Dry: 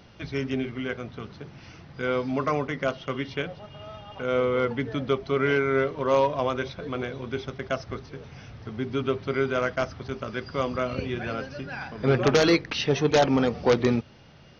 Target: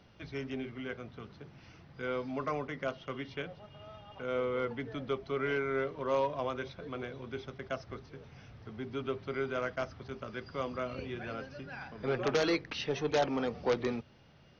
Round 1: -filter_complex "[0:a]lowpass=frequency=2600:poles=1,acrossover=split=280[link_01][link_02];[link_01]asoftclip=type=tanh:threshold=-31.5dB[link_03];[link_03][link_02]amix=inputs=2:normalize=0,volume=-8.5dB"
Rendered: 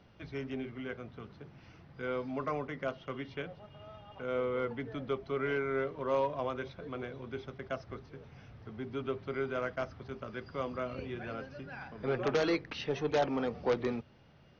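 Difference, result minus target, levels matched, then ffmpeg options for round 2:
8,000 Hz band −5.0 dB
-filter_complex "[0:a]lowpass=frequency=6400:poles=1,acrossover=split=280[link_01][link_02];[link_01]asoftclip=type=tanh:threshold=-31.5dB[link_03];[link_03][link_02]amix=inputs=2:normalize=0,volume=-8.5dB"

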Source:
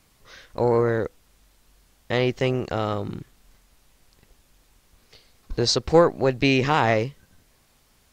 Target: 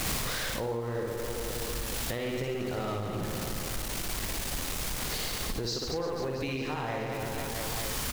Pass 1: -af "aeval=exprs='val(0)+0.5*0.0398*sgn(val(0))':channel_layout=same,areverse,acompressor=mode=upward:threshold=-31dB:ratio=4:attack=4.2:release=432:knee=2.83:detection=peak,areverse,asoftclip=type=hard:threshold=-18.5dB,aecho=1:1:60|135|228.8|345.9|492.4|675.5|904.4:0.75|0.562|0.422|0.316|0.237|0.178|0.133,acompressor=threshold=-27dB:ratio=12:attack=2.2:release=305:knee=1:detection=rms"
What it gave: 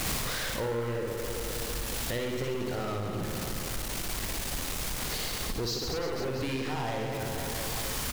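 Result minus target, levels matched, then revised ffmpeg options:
hard clipping: distortion +18 dB
-af "aeval=exprs='val(0)+0.5*0.0398*sgn(val(0))':channel_layout=same,areverse,acompressor=mode=upward:threshold=-31dB:ratio=4:attack=4.2:release=432:knee=2.83:detection=peak,areverse,asoftclip=type=hard:threshold=-6.5dB,aecho=1:1:60|135|228.8|345.9|492.4|675.5|904.4:0.75|0.562|0.422|0.316|0.237|0.178|0.133,acompressor=threshold=-27dB:ratio=12:attack=2.2:release=305:knee=1:detection=rms"

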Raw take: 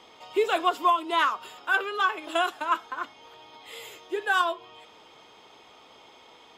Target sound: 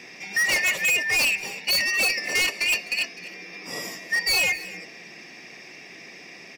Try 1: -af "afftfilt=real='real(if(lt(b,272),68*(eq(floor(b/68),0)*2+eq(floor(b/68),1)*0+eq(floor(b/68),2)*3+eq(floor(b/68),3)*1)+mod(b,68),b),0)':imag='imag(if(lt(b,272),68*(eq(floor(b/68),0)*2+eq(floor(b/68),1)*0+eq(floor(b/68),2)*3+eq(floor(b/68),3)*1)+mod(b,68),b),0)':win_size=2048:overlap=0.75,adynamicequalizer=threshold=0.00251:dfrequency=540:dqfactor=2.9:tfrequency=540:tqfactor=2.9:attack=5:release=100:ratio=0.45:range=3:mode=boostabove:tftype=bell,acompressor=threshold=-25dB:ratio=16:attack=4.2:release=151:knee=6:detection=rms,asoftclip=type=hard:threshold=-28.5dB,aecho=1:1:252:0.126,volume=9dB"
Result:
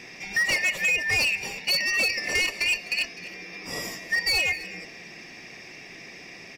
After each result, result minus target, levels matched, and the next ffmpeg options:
downward compressor: peak gain reduction +11 dB; 125 Hz band +5.0 dB
-af "afftfilt=real='real(if(lt(b,272),68*(eq(floor(b/68),0)*2+eq(floor(b/68),1)*0+eq(floor(b/68),2)*3+eq(floor(b/68),3)*1)+mod(b,68),b),0)':imag='imag(if(lt(b,272),68*(eq(floor(b/68),0)*2+eq(floor(b/68),1)*0+eq(floor(b/68),2)*3+eq(floor(b/68),3)*1)+mod(b,68),b),0)':win_size=2048:overlap=0.75,adynamicequalizer=threshold=0.00251:dfrequency=540:dqfactor=2.9:tfrequency=540:tqfactor=2.9:attack=5:release=100:ratio=0.45:range=3:mode=boostabove:tftype=bell,asoftclip=type=hard:threshold=-28.5dB,aecho=1:1:252:0.126,volume=9dB"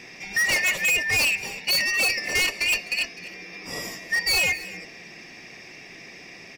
125 Hz band +5.0 dB
-af "afftfilt=real='real(if(lt(b,272),68*(eq(floor(b/68),0)*2+eq(floor(b/68),1)*0+eq(floor(b/68),2)*3+eq(floor(b/68),3)*1)+mod(b,68),b),0)':imag='imag(if(lt(b,272),68*(eq(floor(b/68),0)*2+eq(floor(b/68),1)*0+eq(floor(b/68),2)*3+eq(floor(b/68),3)*1)+mod(b,68),b),0)':win_size=2048:overlap=0.75,adynamicequalizer=threshold=0.00251:dfrequency=540:dqfactor=2.9:tfrequency=540:tqfactor=2.9:attack=5:release=100:ratio=0.45:range=3:mode=boostabove:tftype=bell,highpass=160,asoftclip=type=hard:threshold=-28.5dB,aecho=1:1:252:0.126,volume=9dB"

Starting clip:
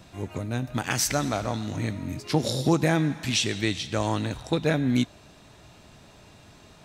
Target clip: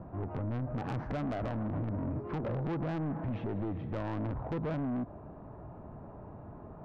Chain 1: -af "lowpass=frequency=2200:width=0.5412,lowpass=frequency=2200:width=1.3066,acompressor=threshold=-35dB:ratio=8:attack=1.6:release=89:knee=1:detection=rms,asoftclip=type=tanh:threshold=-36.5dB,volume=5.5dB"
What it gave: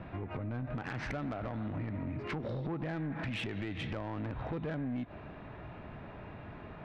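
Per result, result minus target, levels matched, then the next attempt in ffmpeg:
2,000 Hz band +9.5 dB; downward compressor: peak gain reduction +6.5 dB
-af "lowpass=frequency=1100:width=0.5412,lowpass=frequency=1100:width=1.3066,acompressor=threshold=-35dB:ratio=8:attack=1.6:release=89:knee=1:detection=rms,asoftclip=type=tanh:threshold=-36.5dB,volume=5.5dB"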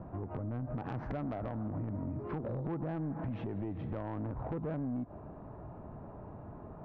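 downward compressor: peak gain reduction +6.5 dB
-af "lowpass=frequency=1100:width=0.5412,lowpass=frequency=1100:width=1.3066,acompressor=threshold=-27.5dB:ratio=8:attack=1.6:release=89:knee=1:detection=rms,asoftclip=type=tanh:threshold=-36.5dB,volume=5.5dB"

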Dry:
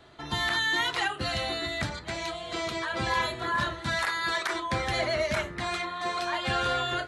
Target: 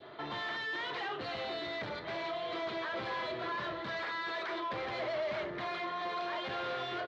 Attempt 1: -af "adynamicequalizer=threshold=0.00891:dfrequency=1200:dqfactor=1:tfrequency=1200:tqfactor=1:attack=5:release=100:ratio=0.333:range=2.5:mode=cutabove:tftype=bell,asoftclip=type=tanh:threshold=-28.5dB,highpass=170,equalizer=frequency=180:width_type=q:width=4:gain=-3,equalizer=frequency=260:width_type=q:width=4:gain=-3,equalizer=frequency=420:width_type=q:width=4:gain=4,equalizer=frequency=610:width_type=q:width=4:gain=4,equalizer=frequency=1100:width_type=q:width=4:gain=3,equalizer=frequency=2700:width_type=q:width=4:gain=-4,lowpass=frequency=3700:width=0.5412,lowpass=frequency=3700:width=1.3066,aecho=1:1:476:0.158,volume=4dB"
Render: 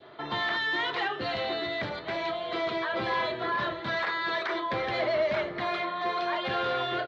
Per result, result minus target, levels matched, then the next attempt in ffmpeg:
echo 211 ms late; soft clipping: distortion −8 dB
-af "adynamicequalizer=threshold=0.00891:dfrequency=1200:dqfactor=1:tfrequency=1200:tqfactor=1:attack=5:release=100:ratio=0.333:range=2.5:mode=cutabove:tftype=bell,asoftclip=type=tanh:threshold=-28.5dB,highpass=170,equalizer=frequency=180:width_type=q:width=4:gain=-3,equalizer=frequency=260:width_type=q:width=4:gain=-3,equalizer=frequency=420:width_type=q:width=4:gain=4,equalizer=frequency=610:width_type=q:width=4:gain=4,equalizer=frequency=1100:width_type=q:width=4:gain=3,equalizer=frequency=2700:width_type=q:width=4:gain=-4,lowpass=frequency=3700:width=0.5412,lowpass=frequency=3700:width=1.3066,aecho=1:1:265:0.158,volume=4dB"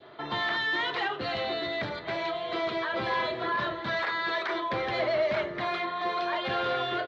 soft clipping: distortion −8 dB
-af "adynamicequalizer=threshold=0.00891:dfrequency=1200:dqfactor=1:tfrequency=1200:tqfactor=1:attack=5:release=100:ratio=0.333:range=2.5:mode=cutabove:tftype=bell,asoftclip=type=tanh:threshold=-40dB,highpass=170,equalizer=frequency=180:width_type=q:width=4:gain=-3,equalizer=frequency=260:width_type=q:width=4:gain=-3,equalizer=frequency=420:width_type=q:width=4:gain=4,equalizer=frequency=610:width_type=q:width=4:gain=4,equalizer=frequency=1100:width_type=q:width=4:gain=3,equalizer=frequency=2700:width_type=q:width=4:gain=-4,lowpass=frequency=3700:width=0.5412,lowpass=frequency=3700:width=1.3066,aecho=1:1:265:0.158,volume=4dB"

